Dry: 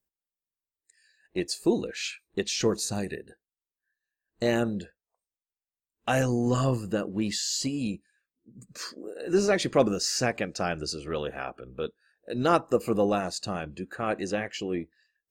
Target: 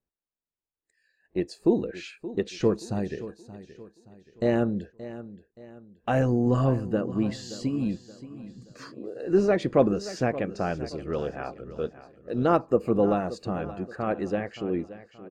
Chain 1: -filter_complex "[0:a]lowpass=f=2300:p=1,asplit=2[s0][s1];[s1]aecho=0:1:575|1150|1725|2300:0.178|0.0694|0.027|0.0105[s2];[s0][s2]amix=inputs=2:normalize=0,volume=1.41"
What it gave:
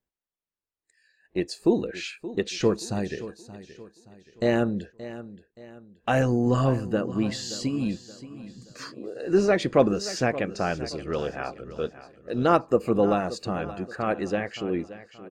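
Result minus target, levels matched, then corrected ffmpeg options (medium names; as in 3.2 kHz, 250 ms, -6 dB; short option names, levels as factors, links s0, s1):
2 kHz band +4.0 dB
-filter_complex "[0:a]lowpass=f=870:p=1,asplit=2[s0][s1];[s1]aecho=0:1:575|1150|1725|2300:0.178|0.0694|0.027|0.0105[s2];[s0][s2]amix=inputs=2:normalize=0,volume=1.41"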